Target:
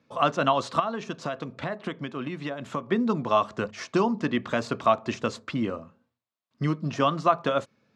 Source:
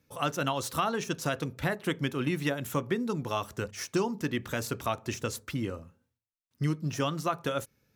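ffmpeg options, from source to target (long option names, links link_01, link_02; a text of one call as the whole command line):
ffmpeg -i in.wav -filter_complex "[0:a]asettb=1/sr,asplit=3[link_01][link_02][link_03];[link_01]atrim=end=0.794[link_04];[link_02]atrim=start=0.79:end=2.92,asetpts=PTS-STARTPTS,afade=type=in:duration=0.004:curve=qsin,afade=type=out:start_time=2.126:duration=0.004:curve=qsin,acompressor=threshold=-34dB:ratio=6[link_05];[link_03]atrim=start=2.916[link_06];[link_04][link_05]acrossfade=duration=0.004:curve1=hsin:curve2=qsin[link_07];[link_07][link_06]acrossfade=duration=0.004:curve1=qsin:curve2=hsin,highpass=140,equalizer=frequency=220:width_type=q:width=4:gain=6,equalizer=frequency=650:width_type=q:width=4:gain=8,equalizer=frequency=1100:width_type=q:width=4:gain=8,equalizer=frequency=5800:width_type=q:width=4:gain=-7,lowpass=frequency=6000:width=0.5412,lowpass=frequency=6000:width=1.3066,volume=3.5dB" out.wav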